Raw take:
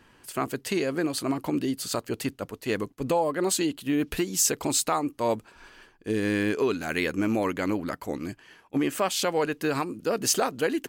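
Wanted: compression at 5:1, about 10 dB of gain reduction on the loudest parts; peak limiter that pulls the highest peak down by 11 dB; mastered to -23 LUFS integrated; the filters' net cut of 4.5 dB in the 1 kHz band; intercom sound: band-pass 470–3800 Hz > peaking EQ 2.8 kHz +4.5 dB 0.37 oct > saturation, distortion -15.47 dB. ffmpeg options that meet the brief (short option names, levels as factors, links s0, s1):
-af "equalizer=f=1000:t=o:g=-5.5,acompressor=threshold=0.0251:ratio=5,alimiter=level_in=1.78:limit=0.0631:level=0:latency=1,volume=0.562,highpass=470,lowpass=3800,equalizer=f=2800:t=o:w=0.37:g=4.5,asoftclip=threshold=0.0168,volume=13.3"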